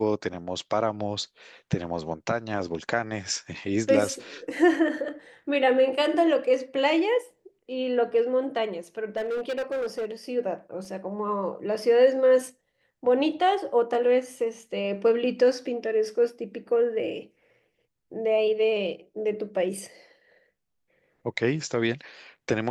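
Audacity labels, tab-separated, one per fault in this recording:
9.160000	10.110000	clipped -25.5 dBFS
10.850000	10.850000	gap 2.5 ms

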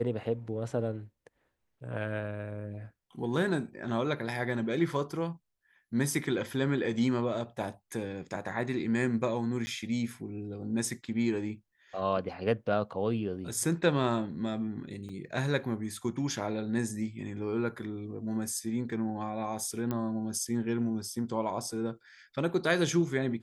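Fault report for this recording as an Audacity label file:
9.660000	9.670000	gap 10 ms
15.090000	15.090000	gap 3.9 ms
19.910000	19.910000	pop -20 dBFS

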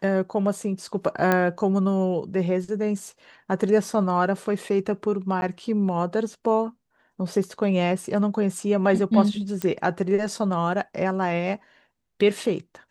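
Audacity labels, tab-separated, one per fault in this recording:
1.320000	1.320000	pop -8 dBFS
5.410000	5.420000	gap 11 ms
9.620000	9.620000	pop -12 dBFS

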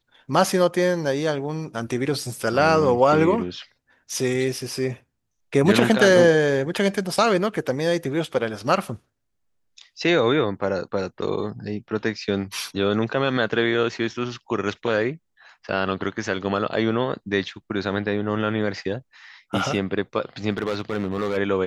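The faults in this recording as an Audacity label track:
20.500000	21.380000	clipped -19.5 dBFS

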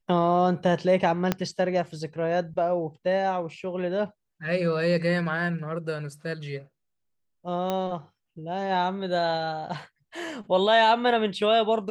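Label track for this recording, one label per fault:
1.320000	1.320000	pop -9 dBFS
7.700000	7.700000	pop -14 dBFS

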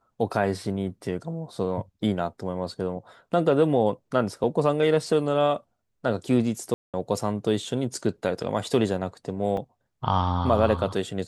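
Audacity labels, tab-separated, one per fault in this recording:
6.740000	6.940000	gap 0.197 s
9.570000	9.570000	gap 2.2 ms

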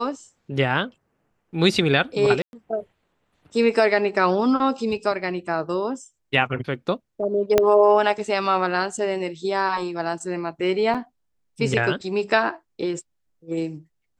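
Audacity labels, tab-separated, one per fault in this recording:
2.420000	2.530000	gap 0.111 s
7.580000	7.580000	pop -3 dBFS
10.940000	10.950000	gap 6.5 ms

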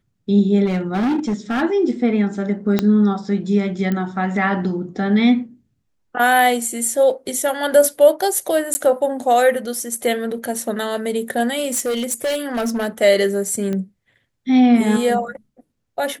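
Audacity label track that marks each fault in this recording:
0.650000	1.630000	clipped -16 dBFS
2.790000	2.790000	pop -4 dBFS
3.920000	3.920000	pop -11 dBFS
8.740000	8.750000	gap 10 ms
11.660000	12.870000	clipped -17.5 dBFS
13.730000	13.730000	pop -14 dBFS

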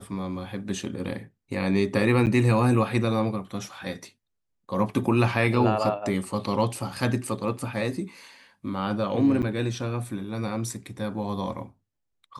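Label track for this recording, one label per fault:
2.260000	2.270000	gap 8.5 ms
9.420000	9.430000	gap 8.2 ms

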